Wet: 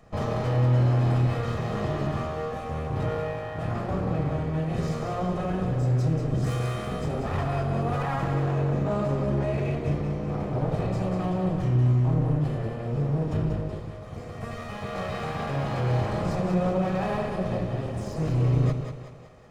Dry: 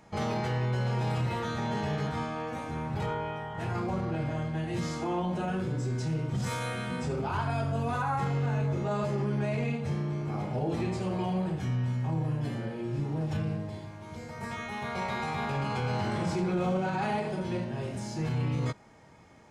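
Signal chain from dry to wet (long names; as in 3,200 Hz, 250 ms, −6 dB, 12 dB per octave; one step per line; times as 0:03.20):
lower of the sound and its delayed copy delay 1.6 ms
tilt shelving filter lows +5 dB
echo with a time of its own for lows and highs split 440 Hz, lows 112 ms, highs 188 ms, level −6 dB
level +1.5 dB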